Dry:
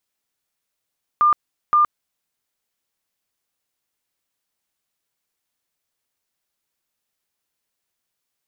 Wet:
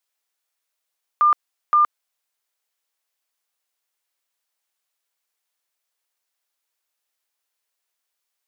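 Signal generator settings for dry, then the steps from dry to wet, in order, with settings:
tone bursts 1200 Hz, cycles 142, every 0.52 s, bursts 2, -11.5 dBFS
HPF 530 Hz 12 dB/oct

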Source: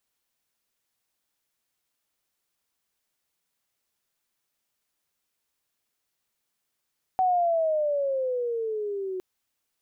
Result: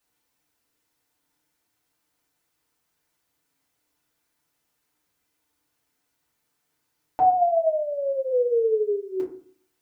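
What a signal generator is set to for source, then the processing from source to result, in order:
gliding synth tone sine, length 2.01 s, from 755 Hz, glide -12.5 st, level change -10 dB, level -19 dB
dynamic EQ 720 Hz, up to -5 dB, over -35 dBFS, Q 0.82; FDN reverb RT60 0.49 s, low-frequency decay 1.35×, high-frequency decay 0.4×, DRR -5.5 dB

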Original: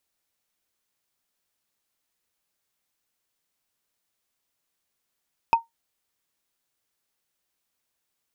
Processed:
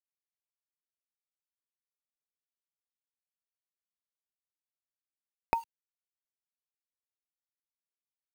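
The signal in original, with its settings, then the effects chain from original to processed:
wood hit, lowest mode 920 Hz, decay 0.15 s, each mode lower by 10 dB, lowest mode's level -10 dB
transient shaper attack -3 dB, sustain +5 dB; bit-crush 8-bit; three-band squash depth 100%

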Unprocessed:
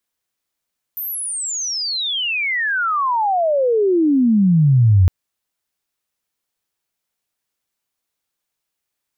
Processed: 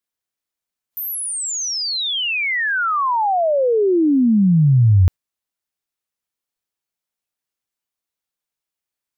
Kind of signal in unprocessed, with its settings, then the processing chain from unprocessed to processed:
chirp logarithmic 14000 Hz -> 87 Hz -23 dBFS -> -8 dBFS 4.11 s
spectral noise reduction 7 dB

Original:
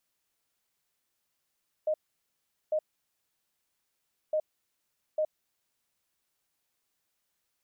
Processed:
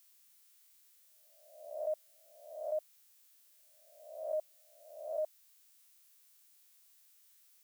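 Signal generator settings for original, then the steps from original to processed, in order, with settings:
beep pattern sine 618 Hz, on 0.07 s, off 0.78 s, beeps 2, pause 1.54 s, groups 2, -24.5 dBFS
spectral swells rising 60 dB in 0.83 s; HPF 600 Hz 6 dB/oct; tilt +3.5 dB/oct

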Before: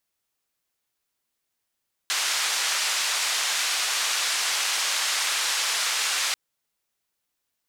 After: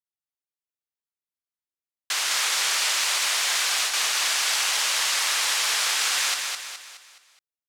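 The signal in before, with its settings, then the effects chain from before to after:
noise band 1000–6700 Hz, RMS -25.5 dBFS 4.24 s
gate with hold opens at -15 dBFS; feedback echo 0.21 s, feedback 44%, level -4.5 dB

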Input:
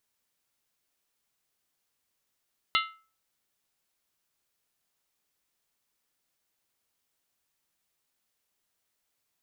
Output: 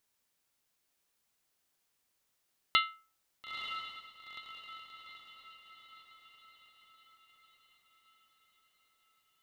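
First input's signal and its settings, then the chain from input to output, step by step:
skin hit, lowest mode 1310 Hz, modes 7, decay 0.38 s, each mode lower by 1.5 dB, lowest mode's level -22.5 dB
diffused feedback echo 0.934 s, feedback 52%, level -7.5 dB

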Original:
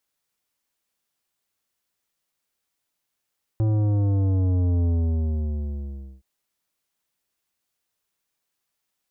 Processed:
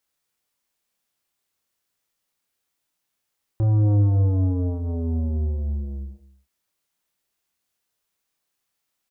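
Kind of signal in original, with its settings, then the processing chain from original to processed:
sub drop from 110 Hz, over 2.62 s, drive 11.5 dB, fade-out 1.37 s, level -19.5 dB
doubler 29 ms -5.5 dB; echo 0.231 s -16.5 dB

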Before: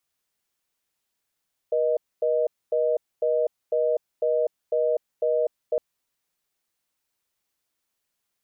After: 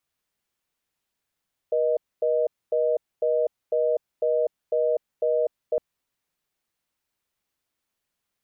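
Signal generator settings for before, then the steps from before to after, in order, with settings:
call progress tone reorder tone, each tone -22.5 dBFS 4.06 s
tone controls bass +3 dB, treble -4 dB

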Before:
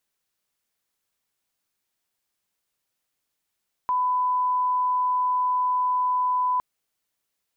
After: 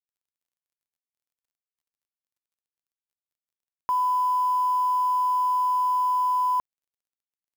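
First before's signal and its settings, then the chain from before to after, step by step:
line-up tone -20 dBFS 2.71 s
companded quantiser 6-bit

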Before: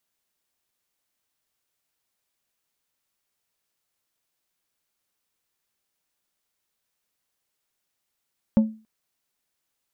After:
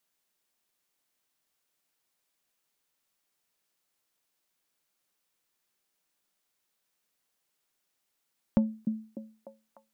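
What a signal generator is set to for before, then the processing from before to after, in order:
glass hit plate, length 0.28 s, lowest mode 219 Hz, decay 0.34 s, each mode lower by 12 dB, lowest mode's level -10.5 dB
bell 61 Hz -14.5 dB 0.96 oct; compressor 4:1, threshold -21 dBFS; delay with a stepping band-pass 0.299 s, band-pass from 230 Hz, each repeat 0.7 oct, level -6 dB

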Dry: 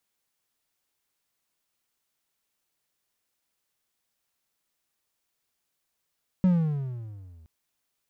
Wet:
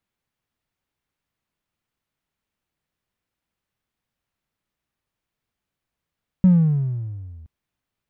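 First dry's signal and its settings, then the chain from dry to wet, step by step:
gliding synth tone triangle, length 1.02 s, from 189 Hz, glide -15.5 st, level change -33 dB, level -14 dB
tone controls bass +10 dB, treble -11 dB

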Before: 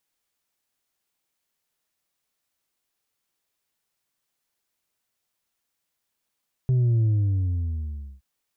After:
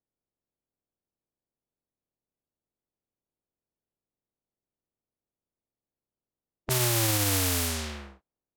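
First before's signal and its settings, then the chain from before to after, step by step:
sub drop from 130 Hz, over 1.52 s, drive 3 dB, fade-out 1.18 s, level -18 dB
spectral contrast lowered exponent 0.25; low-pass opened by the level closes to 500 Hz, open at -22.5 dBFS; limiter -15.5 dBFS

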